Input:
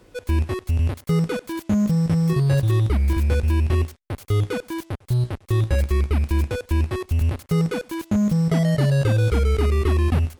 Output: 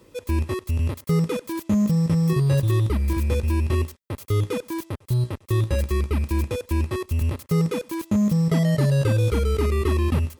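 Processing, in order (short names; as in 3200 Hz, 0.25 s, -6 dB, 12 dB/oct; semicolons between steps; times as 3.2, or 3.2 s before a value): high shelf 9700 Hz +6 dB; notch 1700 Hz, Q 15; notch comb 730 Hz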